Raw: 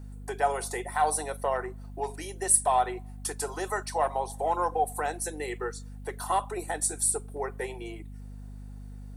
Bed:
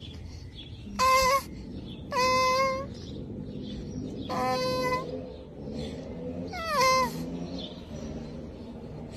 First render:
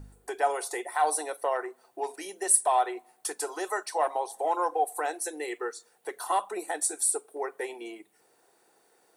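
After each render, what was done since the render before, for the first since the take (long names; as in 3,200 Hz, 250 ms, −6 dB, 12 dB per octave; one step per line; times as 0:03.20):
hum removal 50 Hz, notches 5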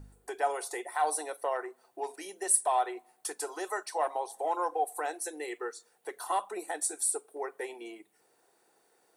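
level −3.5 dB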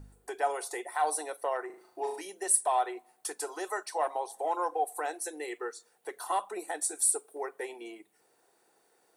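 0:01.66–0:02.21: flutter between parallel walls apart 6.5 metres, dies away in 0.52 s
0:06.95–0:07.49: high-shelf EQ 6,300 Hz +5 dB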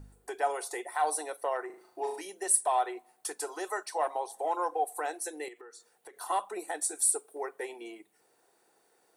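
0:05.48–0:06.21: downward compressor 16 to 1, threshold −45 dBFS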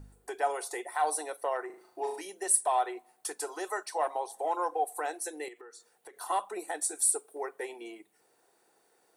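no processing that can be heard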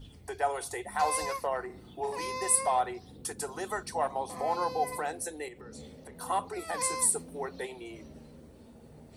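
mix in bed −12 dB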